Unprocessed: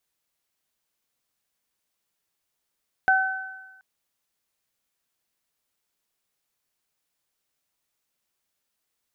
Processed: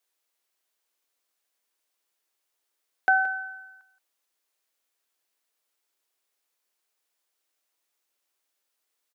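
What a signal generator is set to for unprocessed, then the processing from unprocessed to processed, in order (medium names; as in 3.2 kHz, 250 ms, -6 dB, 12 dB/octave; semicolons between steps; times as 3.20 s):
additive tone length 0.73 s, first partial 761 Hz, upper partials 2 dB, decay 0.96 s, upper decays 1.23 s, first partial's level -18 dB
high-pass 300 Hz 24 dB/octave; delay 173 ms -14.5 dB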